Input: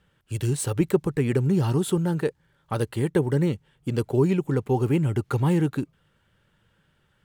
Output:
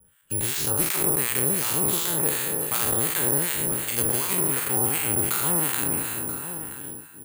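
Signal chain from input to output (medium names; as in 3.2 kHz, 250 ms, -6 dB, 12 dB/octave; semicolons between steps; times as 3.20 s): spectral sustain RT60 1.72 s; vibrato 0.55 Hz 6.4 cents; in parallel at -2 dB: compression, threshold -30 dBFS, peak gain reduction 16.5 dB; on the sum: gate -53 dBFS, range -16 dB; harmonic tremolo 2.7 Hz, depth 100%, crossover 1 kHz; delay 979 ms -21.5 dB; careless resampling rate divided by 4×, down filtered, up zero stuff; spectrum-flattening compressor 2:1; trim -4.5 dB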